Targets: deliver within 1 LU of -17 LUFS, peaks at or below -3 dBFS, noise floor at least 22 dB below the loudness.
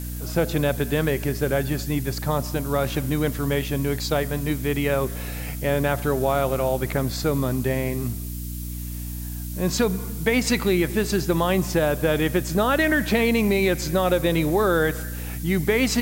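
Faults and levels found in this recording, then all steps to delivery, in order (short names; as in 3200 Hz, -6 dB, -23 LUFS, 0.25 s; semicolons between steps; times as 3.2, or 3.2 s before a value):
hum 60 Hz; harmonics up to 300 Hz; hum level -29 dBFS; noise floor -31 dBFS; noise floor target -46 dBFS; loudness -23.5 LUFS; peak -8.5 dBFS; loudness target -17.0 LUFS
-> notches 60/120/180/240/300 Hz; denoiser 15 dB, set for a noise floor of -31 dBFS; gain +6.5 dB; limiter -3 dBFS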